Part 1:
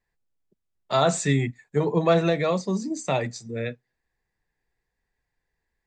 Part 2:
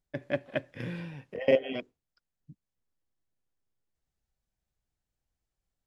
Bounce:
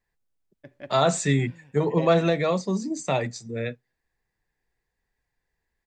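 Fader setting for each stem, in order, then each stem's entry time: 0.0, -10.5 dB; 0.00, 0.50 s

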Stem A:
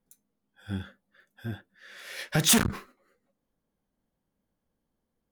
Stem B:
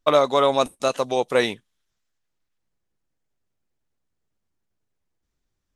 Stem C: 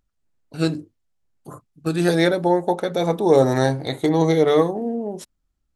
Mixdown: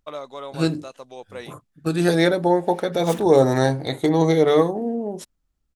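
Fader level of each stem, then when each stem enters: -15.5, -16.5, 0.0 dB; 0.60, 0.00, 0.00 s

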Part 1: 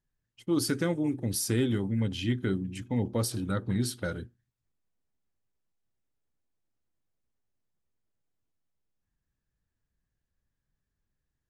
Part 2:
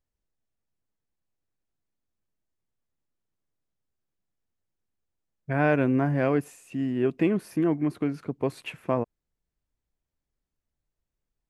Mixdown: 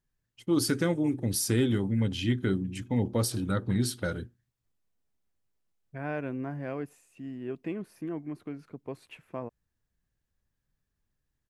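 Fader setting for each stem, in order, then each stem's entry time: +1.5, -11.5 dB; 0.00, 0.45 s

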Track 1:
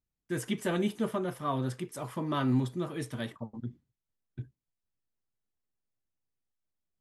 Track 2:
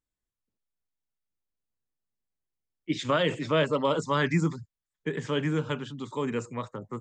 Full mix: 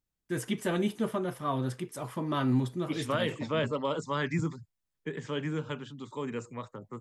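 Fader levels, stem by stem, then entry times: +0.5, -5.5 dB; 0.00, 0.00 s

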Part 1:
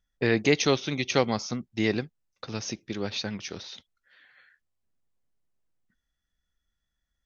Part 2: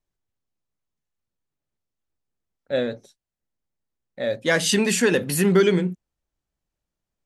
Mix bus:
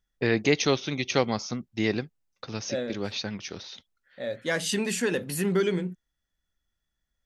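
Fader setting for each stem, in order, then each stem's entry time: -0.5, -7.5 dB; 0.00, 0.00 s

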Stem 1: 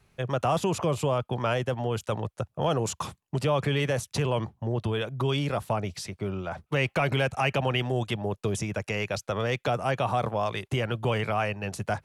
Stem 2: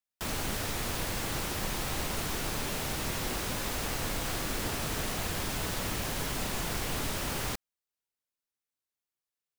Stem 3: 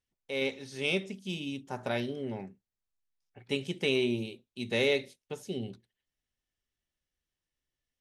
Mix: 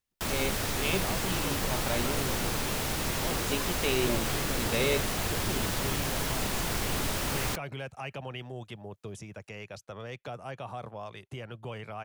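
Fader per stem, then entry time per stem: -13.0, +2.5, -1.5 dB; 0.60, 0.00, 0.00 s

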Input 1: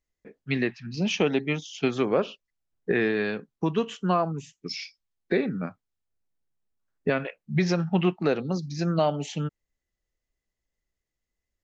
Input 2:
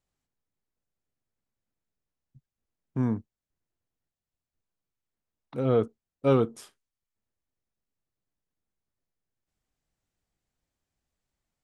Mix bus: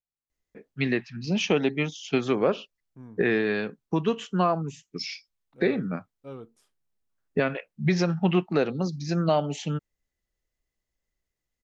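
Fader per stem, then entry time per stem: +0.5, -19.0 dB; 0.30, 0.00 s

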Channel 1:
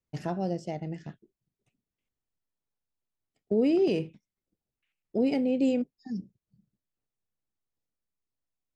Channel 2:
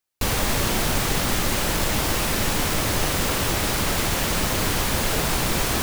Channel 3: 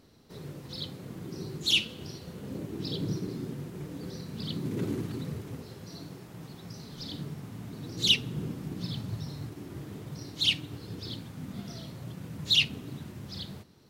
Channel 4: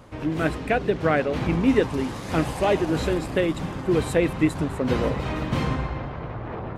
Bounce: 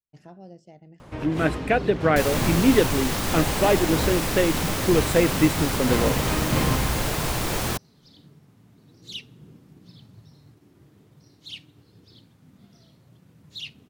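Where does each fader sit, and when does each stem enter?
-14.0, -4.5, -13.5, +1.5 dB; 0.00, 1.95, 1.05, 1.00 s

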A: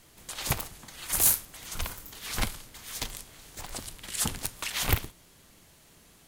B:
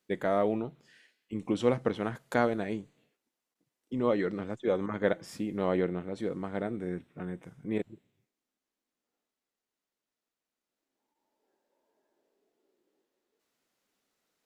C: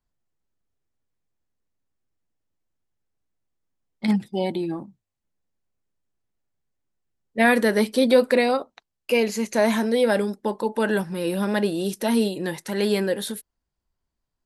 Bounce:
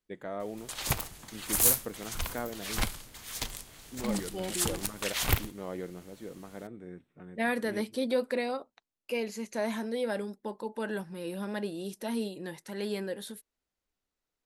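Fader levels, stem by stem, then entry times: -1.0, -10.0, -12.0 dB; 0.40, 0.00, 0.00 s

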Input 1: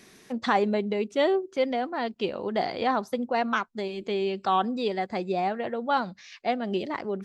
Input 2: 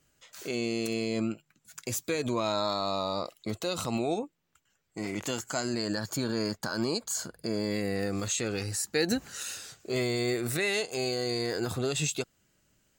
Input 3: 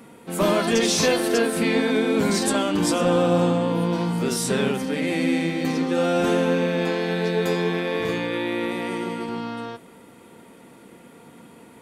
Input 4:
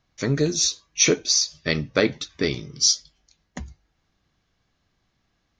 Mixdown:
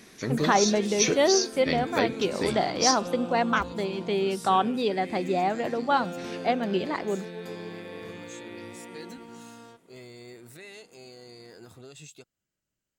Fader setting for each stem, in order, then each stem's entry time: +1.5, -17.0, -16.0, -6.5 dB; 0.00, 0.00, 0.00, 0.00 s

